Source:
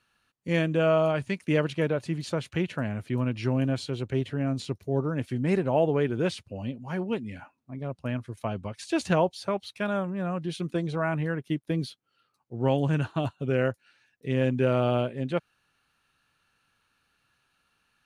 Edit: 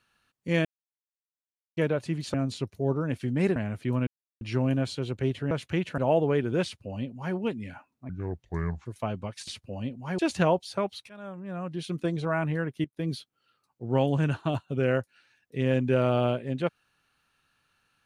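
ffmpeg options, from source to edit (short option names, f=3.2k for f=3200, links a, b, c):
-filter_complex "[0:a]asplit=14[a][b][c][d][e][f][g][h][i][j][k][l][m][n];[a]atrim=end=0.65,asetpts=PTS-STARTPTS,afade=t=out:st=0.646:d=0.004:c=hsin[o];[b]atrim=start=0.65:end=1.77,asetpts=PTS-STARTPTS,volume=0[p];[c]atrim=start=1.77:end=2.342,asetpts=PTS-STARTPTS,afade=t=in:d=0.004:c=hsin[q];[d]atrim=start=4.418:end=5.642[r];[e]atrim=start=2.808:end=3.32,asetpts=PTS-STARTPTS,afade=t=out:st=0.508:d=0.004:c=hsin,apad=pad_dur=0.34[s];[f]atrim=start=3.32:end=4.422,asetpts=PTS-STARTPTS,afade=t=in:d=0.004:c=hsin[t];[g]atrim=start=2.338:end=2.812[u];[h]atrim=start=5.638:end=7.754[v];[i]atrim=start=7.75:end=8.27,asetpts=PTS-STARTPTS,asetrate=29988,aresample=44100[w];[j]atrim=start=8.266:end=8.892[x];[k]atrim=start=6.298:end=7.012[y];[l]atrim=start=8.888:end=9.8,asetpts=PTS-STARTPTS,afade=t=out:st=0.908:d=0.004:c=hsin:silence=0.0749894[z];[m]atrim=start=9.8:end=11.55,asetpts=PTS-STARTPTS,afade=t=in:d=0.89:silence=0.0749894,afade=t=out:st=1.746:d=0.004:c=hsin:silence=0.141254[aa];[n]atrim=start=11.55,asetpts=PTS-STARTPTS,afade=t=in:d=0.29:silence=0.141254[ab];[o][p][q]concat=n=3:v=0:a=1[ac];[ac][r]acrossfade=d=0.004:c1=hsin:c2=hsin[ad];[s][t]concat=n=2:v=0:a=1[ae];[ad][ae]acrossfade=d=0.004:c1=hsin:c2=hsin[af];[af][u]acrossfade=d=0.004:c1=hsin:c2=hsin[ag];[ag][v]acrossfade=d=0.004:c1=hsin:c2=hsin[ah];[ah][w]acrossfade=d=0.004:c1=hsin:c2=hsin[ai];[ai][x]acrossfade=d=0.004:c1=hsin:c2=hsin[aj];[aj][y]acrossfade=d=0.004:c1=hsin:c2=hsin[ak];[z][aa][ab]concat=n=3:v=0:a=1[al];[ak][al]acrossfade=d=0.004:c1=hsin:c2=hsin"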